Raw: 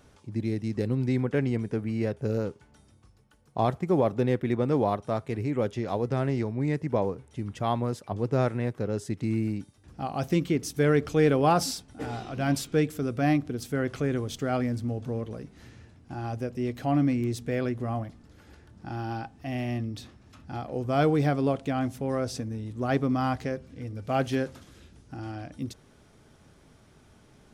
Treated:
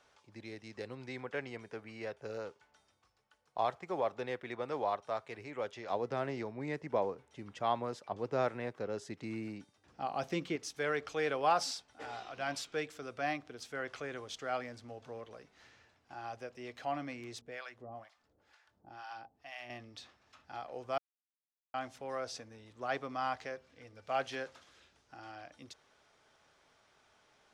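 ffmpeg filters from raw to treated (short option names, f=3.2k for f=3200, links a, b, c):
-filter_complex "[0:a]asettb=1/sr,asplit=3[a][b][c];[a]atrim=end=5.894[d];[b]atrim=start=5.89:end=10.56,asetpts=PTS-STARTPTS,afade=t=in:d=0.004:c=qsin,afade=t=out:st=4.666:d=0.004:c=qsin,equalizer=f=210:t=o:w=2.4:g=8.5[e];[c]atrim=start=10.556[f];[d][e]acrossfade=d=0.004:c1=hsin:c2=qsin[g];[g][f]acrossfade=d=0.004:c1=qsin:c2=hsin,asettb=1/sr,asplit=3[h][i][j];[h]atrim=end=17.414[k];[i]atrim=start=17.41:end=19.7,asetpts=PTS-STARTPTS,afade=t=in:d=0.004:c=qsin,afade=t=out:st=2.286:d=0.004:c=qsin,acrossover=split=690[l][m];[l]aeval=exprs='val(0)*(1-1/2+1/2*cos(2*PI*2.1*n/s))':c=same[n];[m]aeval=exprs='val(0)*(1-1/2-1/2*cos(2*PI*2.1*n/s))':c=same[o];[n][o]amix=inputs=2:normalize=0[p];[j]atrim=start=19.696[q];[k][p]acrossfade=d=0.004:c1=hsin:c2=qsin[r];[r][q]acrossfade=d=0.004:c1=qsin:c2=hsin,asplit=3[s][t][u];[s]atrim=end=20.98,asetpts=PTS-STARTPTS,afade=t=out:st=20.976:d=0.004:c=hsin[v];[t]atrim=start=20.98:end=21.74,asetpts=PTS-STARTPTS,volume=0[w];[u]atrim=start=21.74,asetpts=PTS-STARTPTS,afade=t=in:d=0.004:c=hsin[x];[v][w][x]concat=n=3:v=0:a=1,acrossover=split=530 7300:gain=0.1 1 0.141[y][z][aa];[y][z][aa]amix=inputs=3:normalize=0,volume=-4dB"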